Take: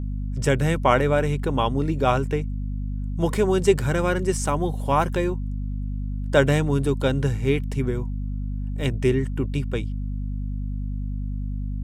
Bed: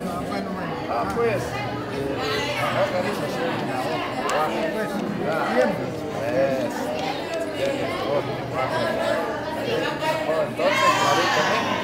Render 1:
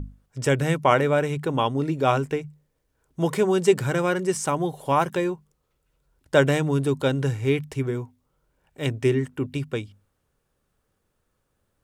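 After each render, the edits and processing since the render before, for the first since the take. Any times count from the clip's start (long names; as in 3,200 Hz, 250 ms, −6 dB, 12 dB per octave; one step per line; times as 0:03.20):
mains-hum notches 50/100/150/200/250 Hz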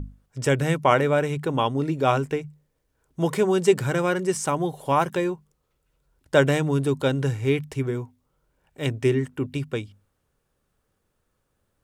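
no processing that can be heard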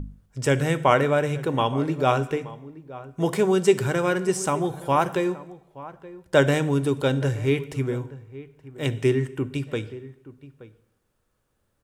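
slap from a distant wall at 150 metres, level −17 dB
dense smooth reverb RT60 0.82 s, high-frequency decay 0.95×, DRR 13.5 dB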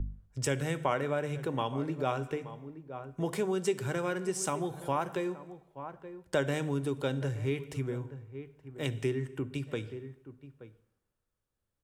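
downward compressor 2.5 to 1, threshold −34 dBFS, peak gain reduction 14.5 dB
multiband upward and downward expander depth 40%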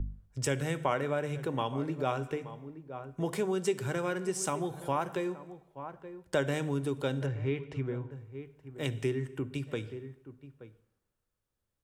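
0:07.26–0:08.11: low-pass filter 3,200 Hz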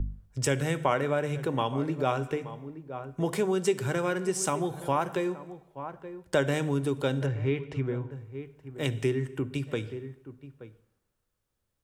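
level +4 dB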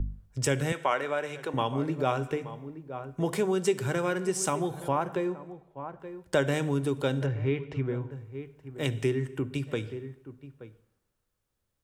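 0:00.72–0:01.54: meter weighting curve A
0:04.88–0:06.00: high-shelf EQ 2,600 Hz −9 dB
0:07.24–0:07.90: high-frequency loss of the air 58 metres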